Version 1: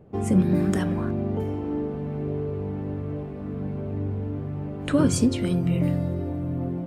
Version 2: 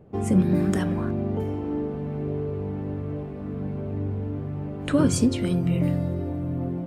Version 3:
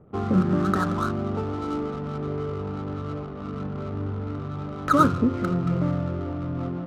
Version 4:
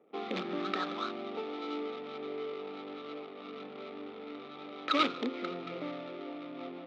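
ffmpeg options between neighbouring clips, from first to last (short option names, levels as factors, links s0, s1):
-af anull
-af "lowpass=f=1300:t=q:w=15,adynamicsmooth=sensitivity=7.5:basefreq=560,volume=0.841"
-filter_complex "[0:a]asplit=2[s0][s1];[s1]aeval=exprs='(mod(4.22*val(0)+1,2)-1)/4.22':c=same,volume=0.316[s2];[s0][s2]amix=inputs=2:normalize=0,highpass=f=330:w=0.5412,highpass=f=330:w=1.3066,equalizer=f=370:t=q:w=4:g=-5,equalizer=f=600:t=q:w=4:g=-5,equalizer=f=1000:t=q:w=4:g=-9,equalizer=f=1500:t=q:w=4:g=-9,equalizer=f=2300:t=q:w=4:g=8,equalizer=f=3600:t=q:w=4:g=9,lowpass=f=4800:w=0.5412,lowpass=f=4800:w=1.3066,volume=0.531"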